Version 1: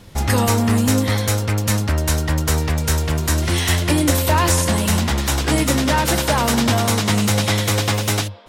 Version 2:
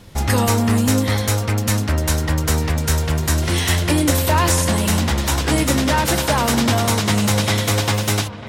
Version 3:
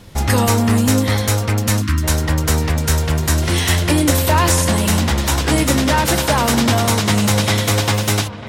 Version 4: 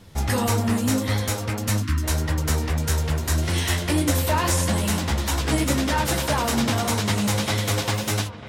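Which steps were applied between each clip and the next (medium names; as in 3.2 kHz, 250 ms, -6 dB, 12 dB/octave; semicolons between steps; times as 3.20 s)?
feedback echo behind a low-pass 949 ms, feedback 55%, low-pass 2.6 kHz, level -15.5 dB
time-frequency box 1.82–2.04 s, 380–940 Hz -25 dB; trim +2 dB
flange 1.7 Hz, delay 9.8 ms, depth 7.1 ms, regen -26%; trim -3.5 dB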